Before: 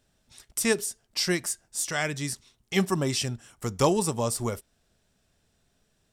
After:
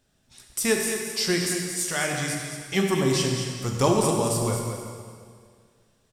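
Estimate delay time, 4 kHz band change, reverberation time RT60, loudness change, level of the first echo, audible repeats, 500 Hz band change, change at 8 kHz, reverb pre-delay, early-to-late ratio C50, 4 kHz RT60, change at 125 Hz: 220 ms, +3.0 dB, 2.0 s, +3.0 dB, -8.5 dB, 1, +3.5 dB, +3.0 dB, 4 ms, 1.5 dB, 1.9 s, +4.0 dB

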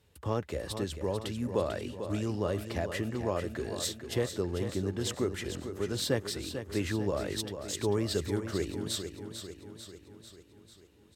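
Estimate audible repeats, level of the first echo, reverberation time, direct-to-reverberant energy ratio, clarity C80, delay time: 6, -9.0 dB, no reverb, no reverb, no reverb, 445 ms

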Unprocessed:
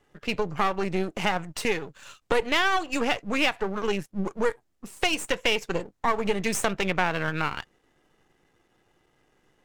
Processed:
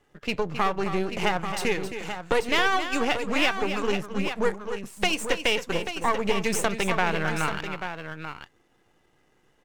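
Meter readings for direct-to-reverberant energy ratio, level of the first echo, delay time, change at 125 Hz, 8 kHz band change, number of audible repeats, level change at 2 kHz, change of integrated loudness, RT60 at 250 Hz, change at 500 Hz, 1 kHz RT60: no reverb, -10.0 dB, 267 ms, +1.0 dB, +1.0 dB, 2, +1.0 dB, +0.5 dB, no reverb, +1.0 dB, no reverb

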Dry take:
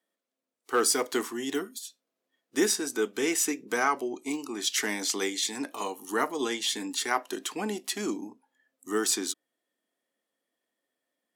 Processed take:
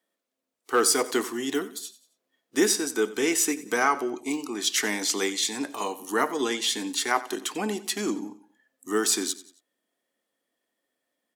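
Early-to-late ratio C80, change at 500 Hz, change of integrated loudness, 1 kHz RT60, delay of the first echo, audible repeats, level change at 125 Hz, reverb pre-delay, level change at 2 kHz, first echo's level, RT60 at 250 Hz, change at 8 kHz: no reverb, +3.0 dB, +3.0 dB, no reverb, 91 ms, 3, +3.0 dB, no reverb, +3.0 dB, -17.0 dB, no reverb, +3.0 dB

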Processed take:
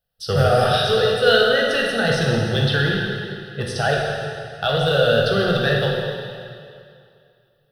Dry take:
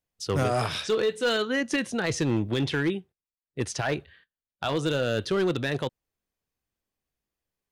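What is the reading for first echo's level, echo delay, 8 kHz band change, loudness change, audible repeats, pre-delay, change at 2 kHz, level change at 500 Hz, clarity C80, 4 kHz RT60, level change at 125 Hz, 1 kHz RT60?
no echo, no echo, +1.0 dB, +8.5 dB, no echo, 6 ms, +10.5 dB, +9.5 dB, 1.5 dB, 2.2 s, +9.5 dB, 2.4 s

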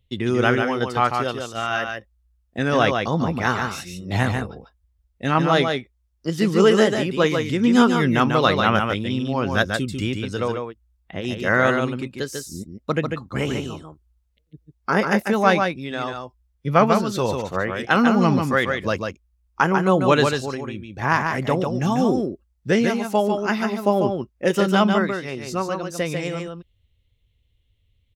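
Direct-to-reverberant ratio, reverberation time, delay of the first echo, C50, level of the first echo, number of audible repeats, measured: no reverb, no reverb, 145 ms, no reverb, -5.0 dB, 1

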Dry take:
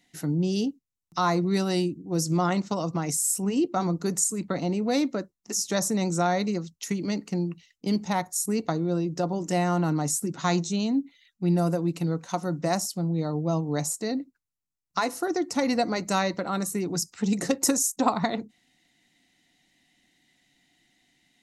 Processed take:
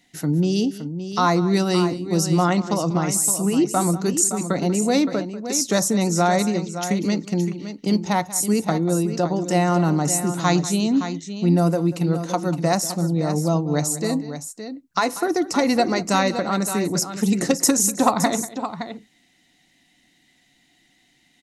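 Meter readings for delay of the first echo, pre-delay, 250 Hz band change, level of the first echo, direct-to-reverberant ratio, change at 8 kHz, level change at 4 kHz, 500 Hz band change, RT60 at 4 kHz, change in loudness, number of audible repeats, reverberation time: 190 ms, no reverb, +6.0 dB, -16.5 dB, no reverb, +6.0 dB, +6.0 dB, +6.0 dB, no reverb, +6.0 dB, 2, no reverb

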